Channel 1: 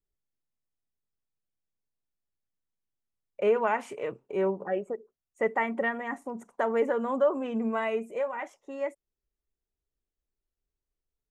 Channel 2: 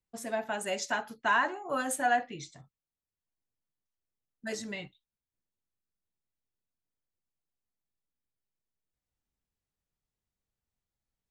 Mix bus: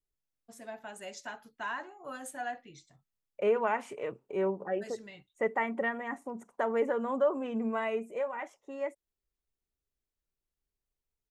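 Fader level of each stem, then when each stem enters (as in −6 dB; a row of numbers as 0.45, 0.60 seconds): −3.0, −10.5 decibels; 0.00, 0.35 seconds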